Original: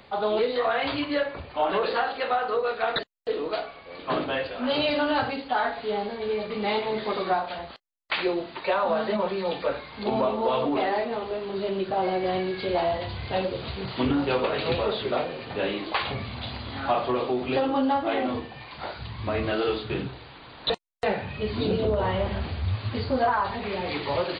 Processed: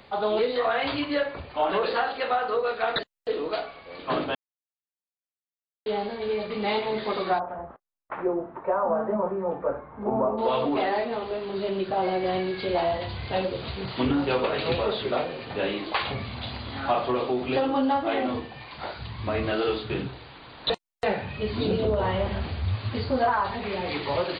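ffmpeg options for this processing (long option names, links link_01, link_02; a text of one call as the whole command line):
ffmpeg -i in.wav -filter_complex "[0:a]asplit=3[link_01][link_02][link_03];[link_01]afade=type=out:start_time=7.38:duration=0.02[link_04];[link_02]lowpass=frequency=1300:width=0.5412,lowpass=frequency=1300:width=1.3066,afade=type=in:start_time=7.38:duration=0.02,afade=type=out:start_time=10.37:duration=0.02[link_05];[link_03]afade=type=in:start_time=10.37:duration=0.02[link_06];[link_04][link_05][link_06]amix=inputs=3:normalize=0,asplit=3[link_07][link_08][link_09];[link_07]atrim=end=4.35,asetpts=PTS-STARTPTS,afade=type=out:start_time=4.346:duration=0.004:curve=hsin[link_10];[link_08]atrim=start=4.35:end=5.86,asetpts=PTS-STARTPTS,volume=0[link_11];[link_09]atrim=start=5.86,asetpts=PTS-STARTPTS,afade=type=in:duration=0.004:curve=hsin[link_12];[link_10][link_11][link_12]concat=n=3:v=0:a=1" out.wav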